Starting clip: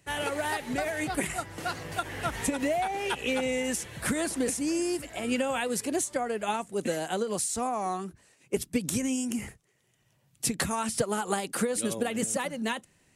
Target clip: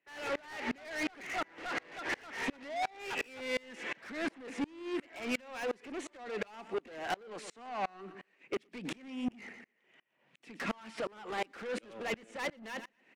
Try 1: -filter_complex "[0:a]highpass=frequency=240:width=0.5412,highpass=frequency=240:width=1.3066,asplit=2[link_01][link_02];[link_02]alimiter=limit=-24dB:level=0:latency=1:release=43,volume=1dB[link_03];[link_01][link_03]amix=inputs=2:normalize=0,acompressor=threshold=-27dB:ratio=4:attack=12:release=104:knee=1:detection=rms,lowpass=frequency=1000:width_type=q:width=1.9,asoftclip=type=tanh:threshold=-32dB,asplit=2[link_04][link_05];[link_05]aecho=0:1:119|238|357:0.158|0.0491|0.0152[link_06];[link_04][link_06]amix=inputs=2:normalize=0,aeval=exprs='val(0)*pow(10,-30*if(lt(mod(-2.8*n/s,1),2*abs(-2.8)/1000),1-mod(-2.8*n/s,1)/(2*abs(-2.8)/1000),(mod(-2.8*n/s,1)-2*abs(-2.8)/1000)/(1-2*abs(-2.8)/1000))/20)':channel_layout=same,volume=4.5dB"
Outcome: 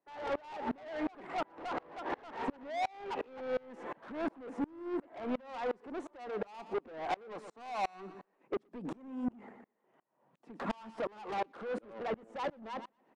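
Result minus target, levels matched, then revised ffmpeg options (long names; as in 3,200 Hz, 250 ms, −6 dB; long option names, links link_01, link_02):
2,000 Hz band −7.0 dB
-filter_complex "[0:a]highpass=frequency=240:width=0.5412,highpass=frequency=240:width=1.3066,asplit=2[link_01][link_02];[link_02]alimiter=limit=-24dB:level=0:latency=1:release=43,volume=1dB[link_03];[link_01][link_03]amix=inputs=2:normalize=0,acompressor=threshold=-27dB:ratio=4:attack=12:release=104:knee=1:detection=rms,lowpass=frequency=2300:width_type=q:width=1.9,asoftclip=type=tanh:threshold=-32dB,asplit=2[link_04][link_05];[link_05]aecho=0:1:119|238|357:0.158|0.0491|0.0152[link_06];[link_04][link_06]amix=inputs=2:normalize=0,aeval=exprs='val(0)*pow(10,-30*if(lt(mod(-2.8*n/s,1),2*abs(-2.8)/1000),1-mod(-2.8*n/s,1)/(2*abs(-2.8)/1000),(mod(-2.8*n/s,1)-2*abs(-2.8)/1000)/(1-2*abs(-2.8)/1000))/20)':channel_layout=same,volume=4.5dB"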